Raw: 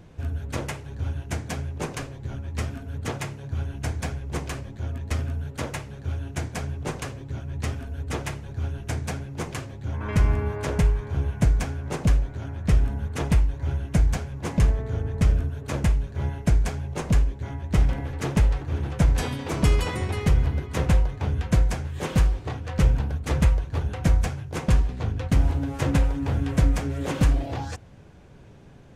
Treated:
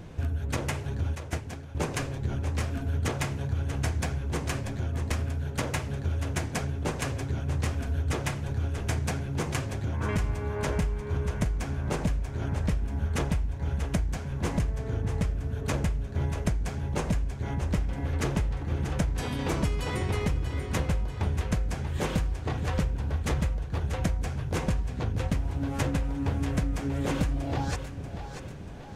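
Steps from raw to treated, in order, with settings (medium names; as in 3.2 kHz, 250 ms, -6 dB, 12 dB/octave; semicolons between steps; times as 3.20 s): 1.15–1.75 s: gate -26 dBFS, range -16 dB; compression 6:1, threshold -31 dBFS, peak gain reduction 16.5 dB; on a send: two-band feedback delay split 360 Hz, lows 466 ms, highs 637 ms, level -9.5 dB; on the sum: trim +5 dB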